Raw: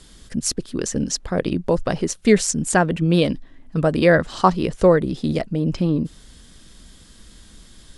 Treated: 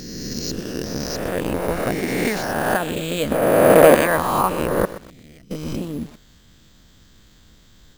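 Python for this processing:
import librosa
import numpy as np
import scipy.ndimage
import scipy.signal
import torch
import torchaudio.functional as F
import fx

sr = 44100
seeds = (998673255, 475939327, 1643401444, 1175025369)

y = fx.spec_swells(x, sr, rise_s=2.47)
y = fx.notch(y, sr, hz=400.0, q=12.0)
y = fx.tone_stack(y, sr, knobs='6-0-2', at=(4.85, 5.51))
y = fx.hpss(y, sr, part='harmonic', gain_db=-12)
y = fx.peak_eq(y, sr, hz=520.0, db=14.5, octaves=2.8, at=(3.31, 3.95))
y = fx.quant_companded(y, sr, bits=6)
y = np.repeat(scipy.signal.resample_poly(y, 1, 4), 4)[:len(y)]
y = fx.echo_crushed(y, sr, ms=125, feedback_pct=35, bits=5, wet_db=-14.0)
y = y * 10.0 ** (-2.0 / 20.0)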